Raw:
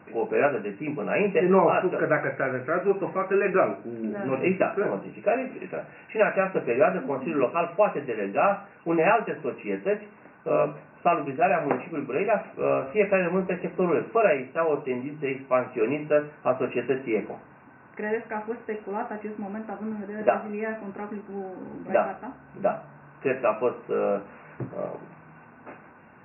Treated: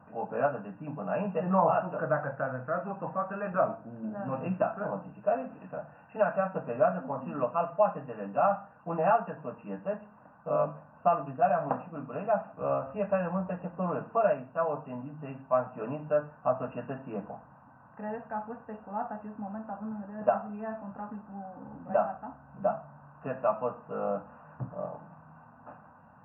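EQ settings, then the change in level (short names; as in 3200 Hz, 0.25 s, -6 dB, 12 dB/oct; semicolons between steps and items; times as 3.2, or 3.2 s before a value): high shelf 2000 Hz -9 dB; fixed phaser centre 910 Hz, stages 4; 0.0 dB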